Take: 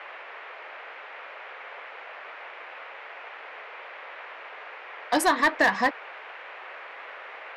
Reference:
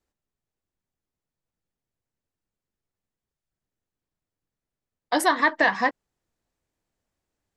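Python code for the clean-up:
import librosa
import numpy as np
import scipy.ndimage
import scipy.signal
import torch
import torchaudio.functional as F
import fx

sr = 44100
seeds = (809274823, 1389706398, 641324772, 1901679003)

y = fx.fix_declip(x, sr, threshold_db=-14.0)
y = fx.noise_reduce(y, sr, print_start_s=4.36, print_end_s=4.86, reduce_db=30.0)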